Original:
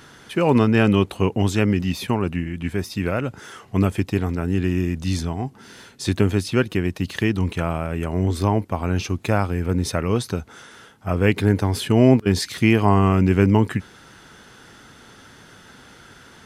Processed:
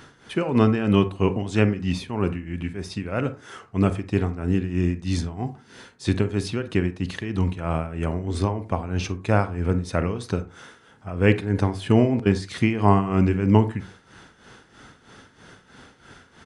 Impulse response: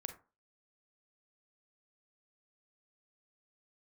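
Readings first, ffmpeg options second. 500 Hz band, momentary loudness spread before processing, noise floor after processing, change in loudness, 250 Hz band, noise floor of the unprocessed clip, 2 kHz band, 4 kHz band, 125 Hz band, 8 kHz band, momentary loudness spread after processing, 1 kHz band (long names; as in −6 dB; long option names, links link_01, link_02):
−2.5 dB, 11 LU, −56 dBFS, −2.5 dB, −2.5 dB, −48 dBFS, −4.0 dB, −5.0 dB, −2.5 dB, −7.0 dB, 11 LU, −2.0 dB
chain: -filter_complex "[0:a]tremolo=f=3.1:d=0.76,asplit=2[link_01][link_02];[1:a]atrim=start_sample=2205,highshelf=frequency=4600:gain=-9[link_03];[link_02][link_03]afir=irnorm=-1:irlink=0,volume=6.5dB[link_04];[link_01][link_04]amix=inputs=2:normalize=0,aresample=22050,aresample=44100,volume=-7dB"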